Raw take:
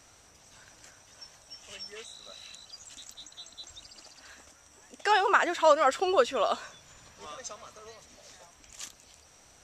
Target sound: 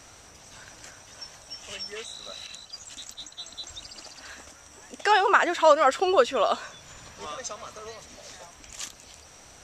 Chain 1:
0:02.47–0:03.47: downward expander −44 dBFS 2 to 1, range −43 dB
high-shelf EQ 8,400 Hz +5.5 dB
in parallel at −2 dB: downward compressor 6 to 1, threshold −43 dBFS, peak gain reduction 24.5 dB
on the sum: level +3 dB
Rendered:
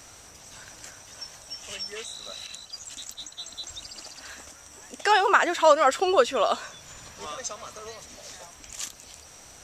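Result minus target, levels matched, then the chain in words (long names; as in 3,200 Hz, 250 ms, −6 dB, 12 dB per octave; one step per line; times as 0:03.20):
8,000 Hz band +4.5 dB
0:02.47–0:03.47: downward expander −44 dBFS 2 to 1, range −43 dB
high-shelf EQ 8,400 Hz −3.5 dB
in parallel at −2 dB: downward compressor 6 to 1, threshold −43 dBFS, peak gain reduction 24.5 dB
on the sum: level +3 dB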